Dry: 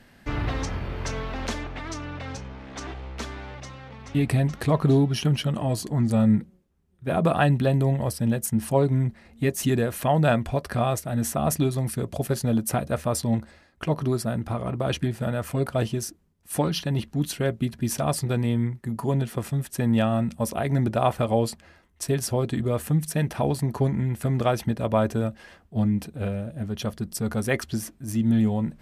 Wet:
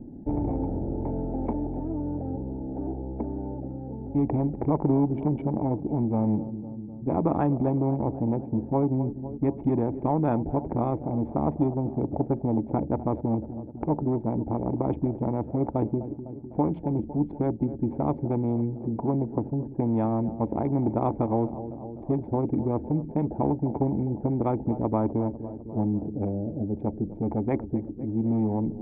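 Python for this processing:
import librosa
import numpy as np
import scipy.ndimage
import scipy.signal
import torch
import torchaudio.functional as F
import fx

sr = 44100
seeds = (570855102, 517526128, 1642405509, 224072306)

y = fx.wiener(x, sr, points=41)
y = fx.formant_cascade(y, sr, vowel='u')
y = fx.echo_feedback(y, sr, ms=252, feedback_pct=58, wet_db=-22.0)
y = fx.spectral_comp(y, sr, ratio=2.0)
y = y * librosa.db_to_amplitude(6.5)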